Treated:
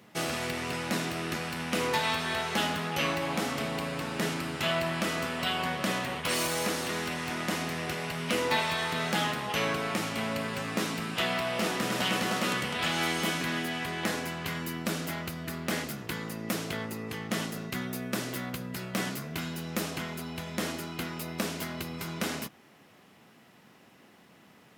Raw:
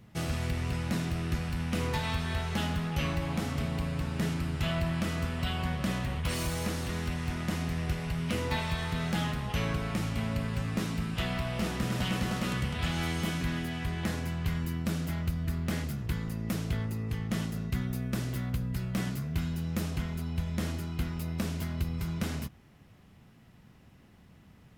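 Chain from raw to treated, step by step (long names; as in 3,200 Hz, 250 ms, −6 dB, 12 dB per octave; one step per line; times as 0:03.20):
high-pass filter 310 Hz 12 dB per octave
level +6.5 dB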